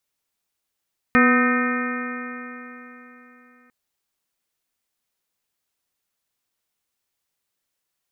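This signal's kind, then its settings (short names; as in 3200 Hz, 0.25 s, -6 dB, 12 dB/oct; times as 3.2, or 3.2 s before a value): stretched partials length 2.55 s, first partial 245 Hz, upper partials -7/-14/-18/-3/-8.5/-2.5/-11/-11 dB, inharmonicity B 0.0027, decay 3.63 s, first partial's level -15 dB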